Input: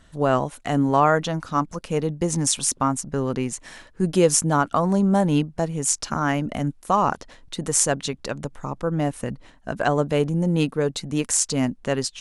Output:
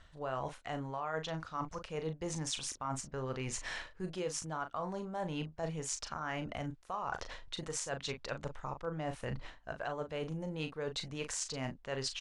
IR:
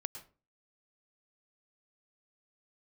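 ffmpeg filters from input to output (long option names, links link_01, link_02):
-filter_complex "[0:a]lowpass=5000,equalizer=frequency=230:width=0.91:gain=-12,alimiter=limit=-14dB:level=0:latency=1:release=403,areverse,acompressor=threshold=-41dB:ratio=6,areverse,asplit=2[link_01][link_02];[link_02]adelay=38,volume=-8.5dB[link_03];[link_01][link_03]amix=inputs=2:normalize=0,volume=4dB"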